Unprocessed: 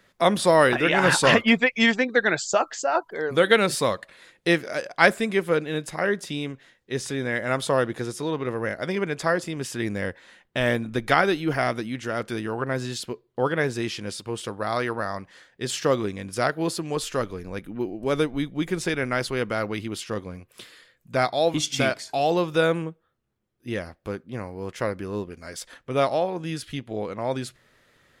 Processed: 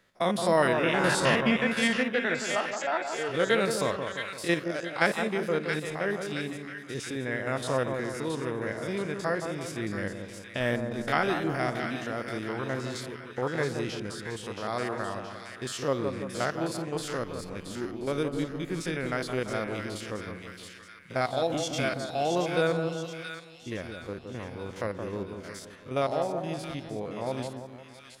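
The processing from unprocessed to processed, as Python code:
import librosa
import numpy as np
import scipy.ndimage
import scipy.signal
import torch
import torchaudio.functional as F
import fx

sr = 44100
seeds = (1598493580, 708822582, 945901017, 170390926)

y = fx.spec_steps(x, sr, hold_ms=50)
y = fx.echo_split(y, sr, split_hz=1400.0, low_ms=170, high_ms=674, feedback_pct=52, wet_db=-6.0)
y = y * librosa.db_to_amplitude(-5.0)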